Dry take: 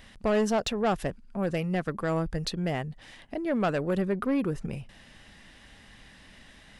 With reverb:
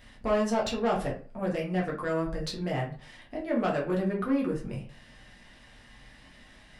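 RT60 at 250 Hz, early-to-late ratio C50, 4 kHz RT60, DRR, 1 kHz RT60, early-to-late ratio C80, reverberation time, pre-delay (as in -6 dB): 0.35 s, 8.5 dB, 0.25 s, -3.5 dB, 0.40 s, 13.5 dB, 0.40 s, 5 ms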